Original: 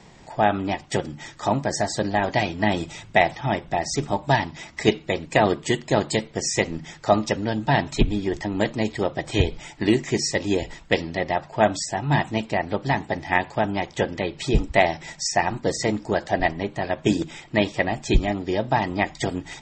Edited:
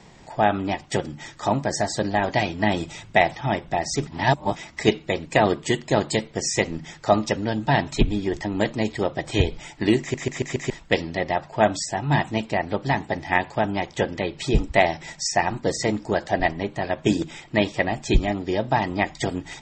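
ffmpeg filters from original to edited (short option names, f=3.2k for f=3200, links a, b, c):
-filter_complex "[0:a]asplit=8[a][b][c][d][e][f][g][h];[a]atrim=end=4.072[i];[b]atrim=start=4.068:end=4.562,asetpts=PTS-STARTPTS,areverse[j];[c]atrim=start=4.558:end=10.142[k];[d]atrim=start=9.998:end=10.142[l];[e]atrim=start=9.998:end=10.142[m];[f]atrim=start=9.998:end=10.142[n];[g]atrim=start=9.998:end=10.142[o];[h]atrim=start=10.698[p];[i][j]acrossfade=d=0.004:c1=hsin:c2=hsin[q];[q][k]acrossfade=d=0.004:c1=hsin:c2=hsin[r];[r][l]acrossfade=d=0.004:c1=hsin:c2=hsin[s];[s][m]acrossfade=d=0.004:c1=hsin:c2=hsin[t];[t][n]acrossfade=d=0.004:c1=hsin:c2=hsin[u];[u][o]acrossfade=d=0.004:c1=hsin:c2=hsin[v];[v][p]acrossfade=d=0.004:c1=hsin:c2=hsin"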